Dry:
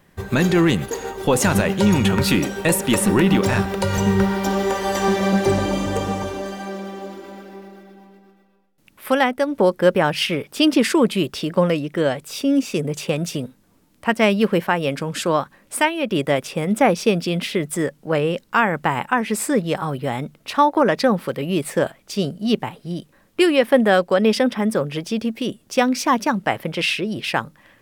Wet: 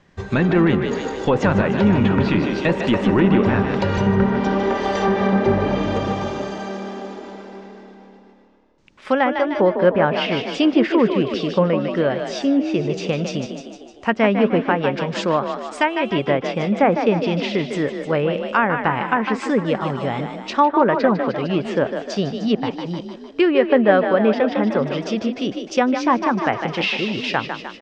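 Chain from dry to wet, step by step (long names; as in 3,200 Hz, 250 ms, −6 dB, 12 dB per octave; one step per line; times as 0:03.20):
Butterworth low-pass 6,900 Hz 36 dB per octave
echo with shifted repeats 152 ms, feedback 56%, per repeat +36 Hz, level −7.5 dB
treble cut that deepens with the level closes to 2,100 Hz, closed at −13.5 dBFS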